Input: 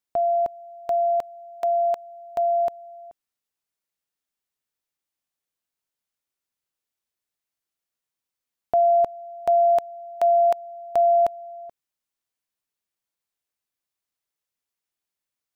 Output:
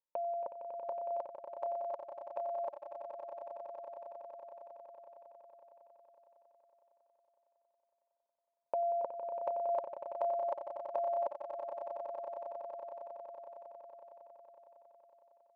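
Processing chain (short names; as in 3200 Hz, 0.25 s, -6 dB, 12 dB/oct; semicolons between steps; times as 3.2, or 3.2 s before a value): rattling part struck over -37 dBFS, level -28 dBFS; double band-pass 720 Hz, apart 0.73 oct; swelling echo 92 ms, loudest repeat 8, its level -10 dB; gain +1 dB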